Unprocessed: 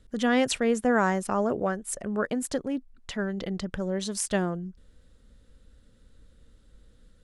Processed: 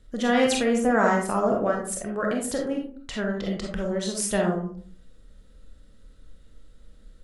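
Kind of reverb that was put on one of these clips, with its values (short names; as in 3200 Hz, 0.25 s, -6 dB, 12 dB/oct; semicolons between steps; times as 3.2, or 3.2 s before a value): digital reverb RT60 0.51 s, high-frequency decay 0.4×, pre-delay 5 ms, DRR -0.5 dB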